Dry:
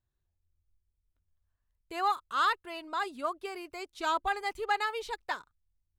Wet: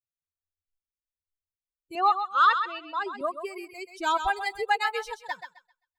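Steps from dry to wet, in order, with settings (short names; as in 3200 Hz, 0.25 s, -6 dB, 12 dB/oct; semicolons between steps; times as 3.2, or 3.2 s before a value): per-bin expansion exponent 2; 1.95–3.21 speaker cabinet 260–5900 Hz, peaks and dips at 270 Hz -4 dB, 390 Hz +3 dB, 580 Hz +6 dB, 1300 Hz +4 dB, 4700 Hz -4 dB; thinning echo 0.131 s, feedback 25%, high-pass 520 Hz, level -8 dB; gain +7 dB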